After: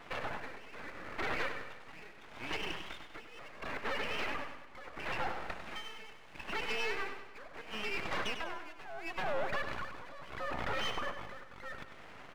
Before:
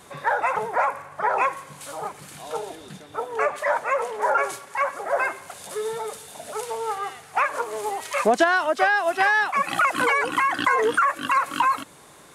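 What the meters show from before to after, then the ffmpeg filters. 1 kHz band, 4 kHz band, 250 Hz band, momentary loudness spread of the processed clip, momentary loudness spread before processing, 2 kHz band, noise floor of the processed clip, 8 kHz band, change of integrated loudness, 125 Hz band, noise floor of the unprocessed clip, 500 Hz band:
-19.5 dB, -6.5 dB, -12.5 dB, 14 LU, 15 LU, -15.5 dB, -52 dBFS, -18.5 dB, -16.5 dB, -4.5 dB, -48 dBFS, -17.0 dB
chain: -af "afftfilt=real='real(if(between(b,1,1012),(2*floor((b-1)/92)+1)*92-b,b),0)':imag='imag(if(between(b,1,1012),(2*floor((b-1)/92)+1)*92-b,b),0)*if(between(b,1,1012),-1,1)':win_size=2048:overlap=0.75,lowpass=1.8k,acompressor=threshold=-30dB:ratio=16,asoftclip=type=tanh:threshold=-26dB,equalizer=f=320:w=0.59:g=11.5,alimiter=level_in=0.5dB:limit=-24dB:level=0:latency=1:release=105,volume=-0.5dB,tremolo=f=0.74:d=0.78,aeval=exprs='0.0596*(cos(1*acos(clip(val(0)/0.0596,-1,1)))-cos(1*PI/2))+0.00266*(cos(7*acos(clip(val(0)/0.0596,-1,1)))-cos(7*PI/2))':c=same,aeval=exprs='abs(val(0))':c=same,lowshelf=f=100:g=-7.5,aecho=1:1:98|196|294|392|490|588:0.355|0.174|0.0852|0.0417|0.0205|0.01,volume=1dB"

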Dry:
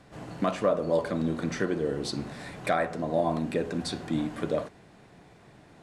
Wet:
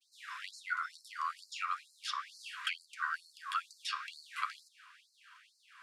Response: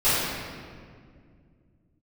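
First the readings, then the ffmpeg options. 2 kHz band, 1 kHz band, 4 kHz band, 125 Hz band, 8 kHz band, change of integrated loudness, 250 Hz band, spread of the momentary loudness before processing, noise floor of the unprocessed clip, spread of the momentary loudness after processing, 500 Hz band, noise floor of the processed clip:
-1.0 dB, -4.5 dB, -1.5 dB, under -40 dB, -6.5 dB, -10.0 dB, under -40 dB, 8 LU, -55 dBFS, 10 LU, under -40 dB, -72 dBFS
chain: -filter_complex "[0:a]highpass=93,agate=range=-33dB:threshold=-52dB:ratio=3:detection=peak,adynamicequalizer=threshold=0.00501:dfrequency=1800:dqfactor=1:tfrequency=1800:tqfactor=1:attack=5:release=100:ratio=0.375:range=4:mode=cutabove:tftype=bell,acrossover=split=400|3600[a][b][c];[b]acontrast=42[d];[a][d][c]amix=inputs=3:normalize=0,aeval=exprs='val(0)*sin(2*PI*860*n/s)':c=same,acrossover=split=280|4800[e][f][g];[e]acompressor=threshold=-35dB:ratio=4[h];[f]acompressor=threshold=-29dB:ratio=4[i];[g]acompressor=threshold=-53dB:ratio=4[j];[h][i][j]amix=inputs=3:normalize=0,afftfilt=real='re*gte(b*sr/1024,940*pow(4100/940,0.5+0.5*sin(2*PI*2.2*pts/sr)))':imag='im*gte(b*sr/1024,940*pow(4100/940,0.5+0.5*sin(2*PI*2.2*pts/sr)))':win_size=1024:overlap=0.75,volume=1dB"

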